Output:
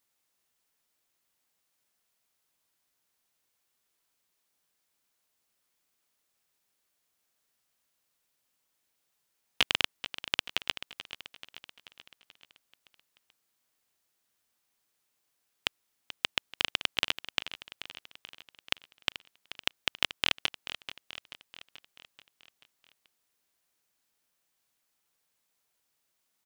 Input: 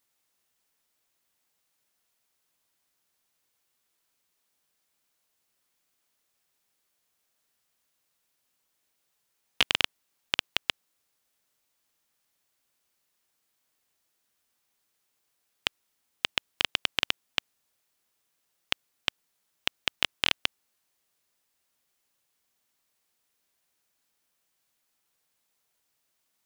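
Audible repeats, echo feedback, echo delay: 5, 56%, 434 ms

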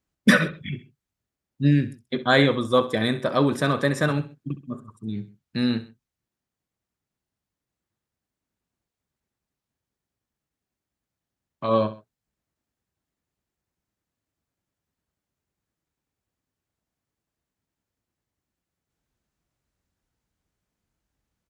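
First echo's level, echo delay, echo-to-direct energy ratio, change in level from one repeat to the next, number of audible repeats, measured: −15.0 dB, 65 ms, −14.0 dB, −7.0 dB, 2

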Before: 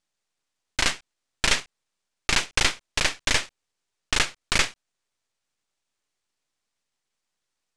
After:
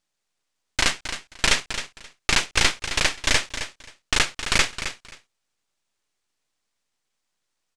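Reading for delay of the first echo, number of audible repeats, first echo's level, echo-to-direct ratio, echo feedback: 265 ms, 2, −10.5 dB, −10.5 dB, 18%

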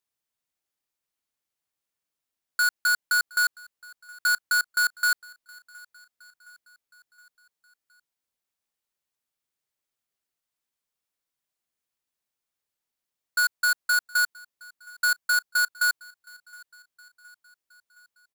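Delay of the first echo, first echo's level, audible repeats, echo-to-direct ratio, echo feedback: 717 ms, −24.0 dB, 3, −22.5 dB, 55%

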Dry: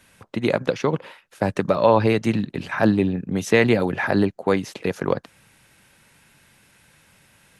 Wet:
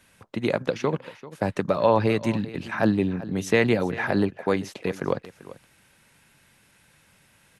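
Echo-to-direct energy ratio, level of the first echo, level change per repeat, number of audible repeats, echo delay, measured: −17.0 dB, −17.0 dB, repeats not evenly spaced, 1, 390 ms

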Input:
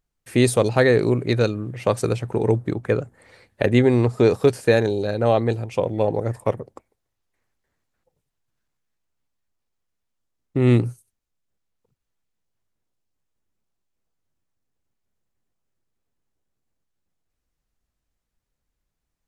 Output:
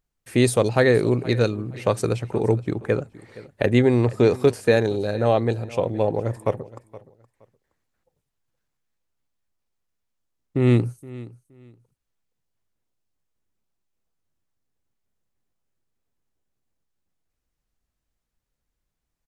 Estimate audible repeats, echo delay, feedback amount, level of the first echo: 2, 470 ms, 22%, −19.0 dB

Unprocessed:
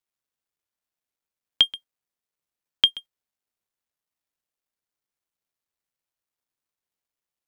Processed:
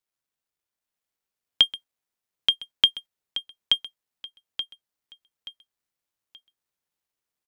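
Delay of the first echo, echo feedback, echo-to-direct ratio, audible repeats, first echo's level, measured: 878 ms, 32%, −2.5 dB, 4, −3.0 dB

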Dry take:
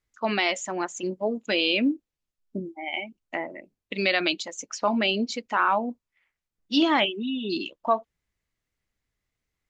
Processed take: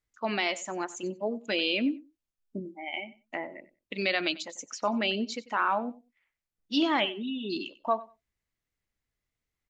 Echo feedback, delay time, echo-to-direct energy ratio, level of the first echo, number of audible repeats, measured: 16%, 94 ms, −18.5 dB, −18.5 dB, 2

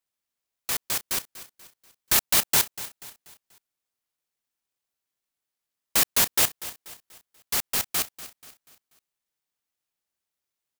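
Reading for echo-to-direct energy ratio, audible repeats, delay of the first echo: −14.5 dB, 3, 242 ms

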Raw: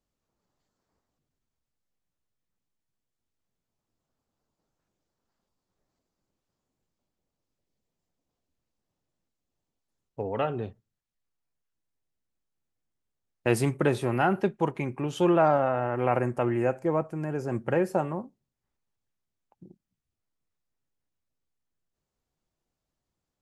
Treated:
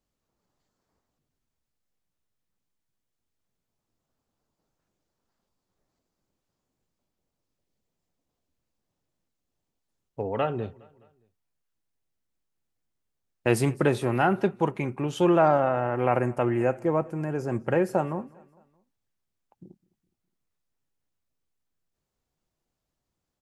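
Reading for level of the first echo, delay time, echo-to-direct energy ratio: −24.0 dB, 207 ms, −23.0 dB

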